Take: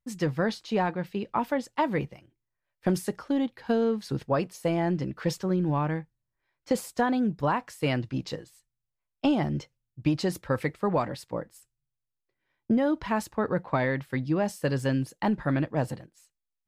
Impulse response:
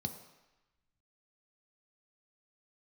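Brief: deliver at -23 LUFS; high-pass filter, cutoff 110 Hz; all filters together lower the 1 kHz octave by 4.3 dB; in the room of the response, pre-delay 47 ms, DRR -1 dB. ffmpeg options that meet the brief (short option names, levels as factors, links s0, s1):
-filter_complex "[0:a]highpass=110,equalizer=f=1000:t=o:g=-5.5,asplit=2[s0][s1];[1:a]atrim=start_sample=2205,adelay=47[s2];[s1][s2]afir=irnorm=-1:irlink=0,volume=1.12[s3];[s0][s3]amix=inputs=2:normalize=0,volume=0.708"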